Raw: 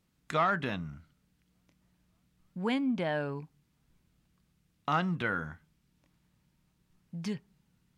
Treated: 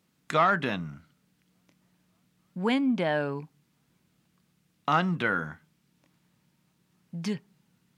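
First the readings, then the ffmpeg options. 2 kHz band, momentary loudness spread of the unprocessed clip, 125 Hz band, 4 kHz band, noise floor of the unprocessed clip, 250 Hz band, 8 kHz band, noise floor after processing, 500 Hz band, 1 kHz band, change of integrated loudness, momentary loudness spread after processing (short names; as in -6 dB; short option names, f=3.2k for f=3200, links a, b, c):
+5.0 dB, 15 LU, +3.0 dB, +5.0 dB, -74 dBFS, +4.5 dB, n/a, -72 dBFS, +5.0 dB, +5.0 dB, +4.5 dB, 16 LU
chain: -af "highpass=140,volume=5dB"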